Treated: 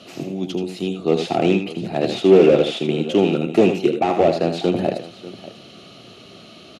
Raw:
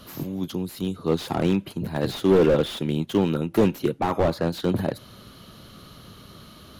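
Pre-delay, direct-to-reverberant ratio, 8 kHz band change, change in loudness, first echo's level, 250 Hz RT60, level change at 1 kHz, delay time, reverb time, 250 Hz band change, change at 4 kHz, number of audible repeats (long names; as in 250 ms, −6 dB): no reverb audible, no reverb audible, can't be measured, +5.5 dB, −8.0 dB, no reverb audible, +6.0 dB, 79 ms, no reverb audible, +4.5 dB, +5.5 dB, 2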